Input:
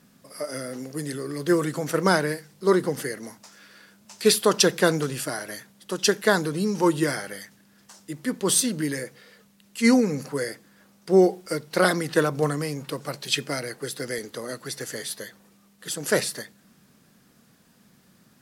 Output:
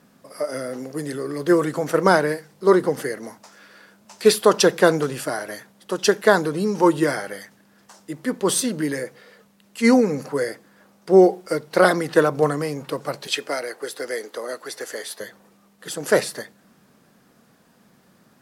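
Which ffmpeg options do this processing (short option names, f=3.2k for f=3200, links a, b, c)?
-filter_complex "[0:a]asettb=1/sr,asplit=3[a][b][c];[a]atrim=end=13.274[d];[b]atrim=start=13.27:end=15.21,asetpts=PTS-STARTPTS,afade=t=in:d=0.004:c=qsin,afade=t=out:st=1.936:d=0.004:c=qsin,highpass=370[e];[c]atrim=start=15.206[f];[d][e]acrossfade=d=0.004:c1=hsin:c2=qsin[g];[g][f]acrossfade=d=0.004:c1=qsin:c2=hsin,equalizer=f=690:w=0.43:g=8.5,volume=-2dB"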